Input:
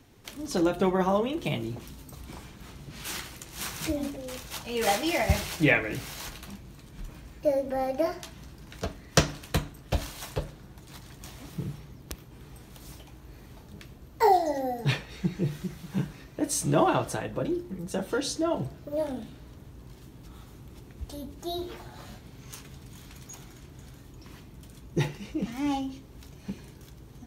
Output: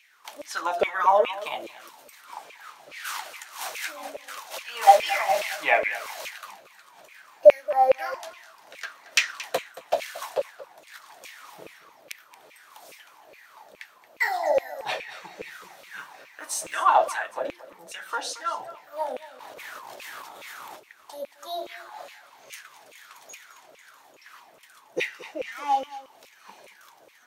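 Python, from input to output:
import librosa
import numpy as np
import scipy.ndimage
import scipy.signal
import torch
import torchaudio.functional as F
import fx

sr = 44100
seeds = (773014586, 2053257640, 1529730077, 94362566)

p1 = fx.quant_companded(x, sr, bits=8, at=(16.0, 16.74))
p2 = fx.filter_lfo_highpass(p1, sr, shape='saw_down', hz=2.4, low_hz=520.0, high_hz=2500.0, q=6.8)
p3 = p2 + fx.echo_single(p2, sr, ms=226, db=-16.5, dry=0)
p4 = fx.over_compress(p3, sr, threshold_db=-56.0, ratio=-1.0, at=(19.37, 20.78), fade=0.02)
y = p4 * 10.0 ** (-1.0 / 20.0)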